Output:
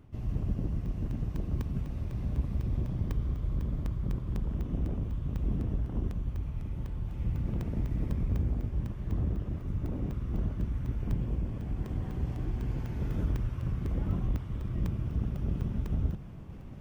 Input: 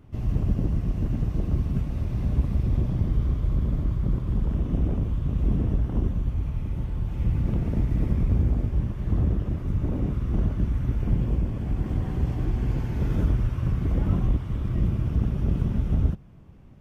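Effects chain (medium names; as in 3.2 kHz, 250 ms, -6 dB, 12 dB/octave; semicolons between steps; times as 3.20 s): reverse; upward compressor, threshold -24 dBFS; reverse; crackling interface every 0.25 s, samples 64, zero, from 0.86 s; trim -7.5 dB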